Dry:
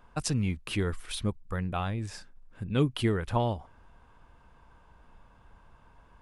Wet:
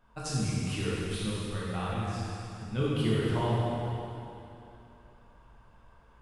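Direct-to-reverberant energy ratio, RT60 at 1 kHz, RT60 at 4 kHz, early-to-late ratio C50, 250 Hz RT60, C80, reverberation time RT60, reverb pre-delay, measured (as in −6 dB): −8.5 dB, 2.9 s, 2.7 s, −4.0 dB, 3.0 s, −2.5 dB, 2.9 s, 5 ms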